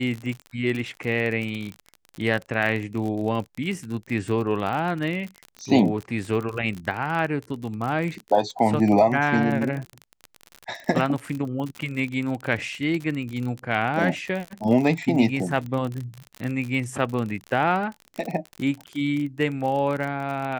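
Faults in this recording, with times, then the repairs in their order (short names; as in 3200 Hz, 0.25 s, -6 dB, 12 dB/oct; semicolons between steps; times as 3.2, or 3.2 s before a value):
crackle 40/s -28 dBFS
14.45 gap 4 ms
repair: de-click; interpolate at 14.45, 4 ms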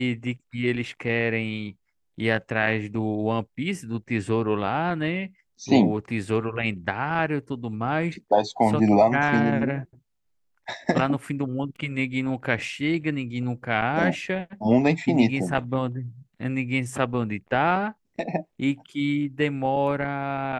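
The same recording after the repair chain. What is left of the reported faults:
none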